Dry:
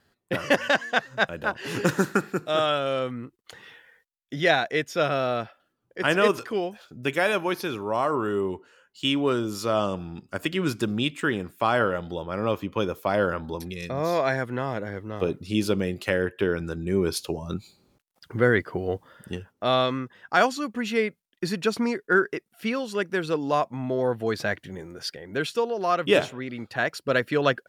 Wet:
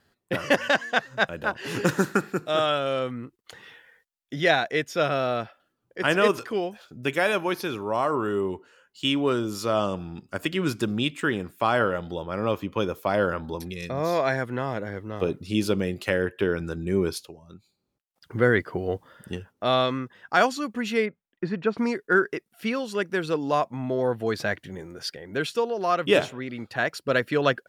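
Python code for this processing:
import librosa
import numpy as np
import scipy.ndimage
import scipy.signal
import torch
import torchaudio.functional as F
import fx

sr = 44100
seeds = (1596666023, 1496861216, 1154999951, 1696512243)

y = fx.lowpass(x, sr, hz=1900.0, slope=12, at=(21.05, 21.77), fade=0.02)
y = fx.edit(y, sr, fx.fade_down_up(start_s=17.02, length_s=1.35, db=-16.0, fade_s=0.3), tone=tone)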